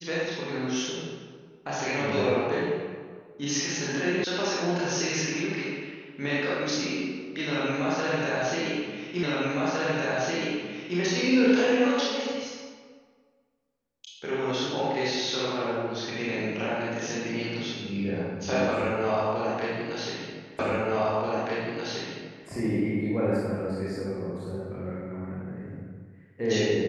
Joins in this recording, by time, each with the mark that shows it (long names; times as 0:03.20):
0:04.24: cut off before it has died away
0:09.23: the same again, the last 1.76 s
0:20.59: the same again, the last 1.88 s